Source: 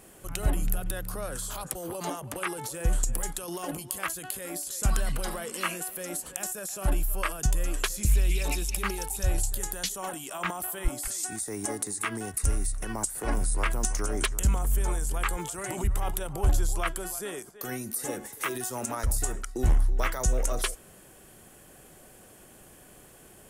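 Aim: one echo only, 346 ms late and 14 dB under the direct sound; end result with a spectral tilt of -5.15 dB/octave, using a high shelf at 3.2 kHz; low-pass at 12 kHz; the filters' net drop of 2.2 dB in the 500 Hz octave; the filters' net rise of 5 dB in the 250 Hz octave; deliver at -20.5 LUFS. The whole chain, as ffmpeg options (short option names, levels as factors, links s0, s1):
-af "lowpass=12000,equalizer=f=250:t=o:g=9,equalizer=f=500:t=o:g=-6.5,highshelf=f=3200:g=-8,aecho=1:1:346:0.2,volume=3.55"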